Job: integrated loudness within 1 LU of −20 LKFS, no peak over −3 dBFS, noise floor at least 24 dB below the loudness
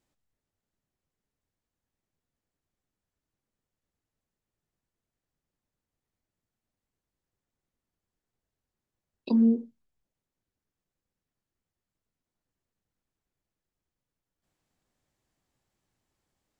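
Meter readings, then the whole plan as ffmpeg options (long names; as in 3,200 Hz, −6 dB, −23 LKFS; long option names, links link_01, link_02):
integrated loudness −25.0 LKFS; sample peak −14.5 dBFS; target loudness −20.0 LKFS
→ -af "volume=5dB"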